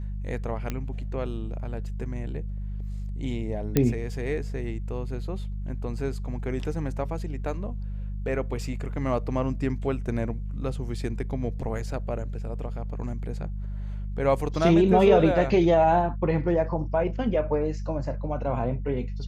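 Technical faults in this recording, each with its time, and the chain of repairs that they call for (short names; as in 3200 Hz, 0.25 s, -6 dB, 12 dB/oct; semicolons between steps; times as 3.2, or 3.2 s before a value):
hum 50 Hz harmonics 4 -32 dBFS
0.7 pop -16 dBFS
3.77 pop -7 dBFS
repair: de-click; de-hum 50 Hz, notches 4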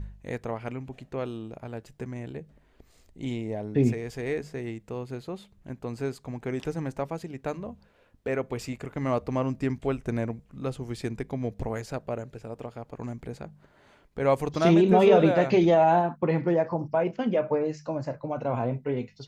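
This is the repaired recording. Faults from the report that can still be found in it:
none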